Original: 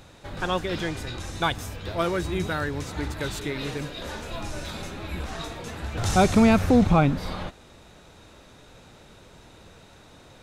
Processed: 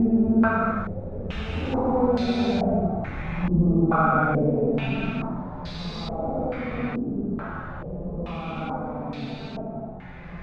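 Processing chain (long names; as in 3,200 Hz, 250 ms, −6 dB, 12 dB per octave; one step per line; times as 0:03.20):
echo machine with several playback heads 286 ms, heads first and second, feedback 56%, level −11.5 dB
extreme stretch with random phases 8×, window 0.10 s, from 0:06.48
low-pass on a step sequencer 2.3 Hz 330–4,200 Hz
level −7.5 dB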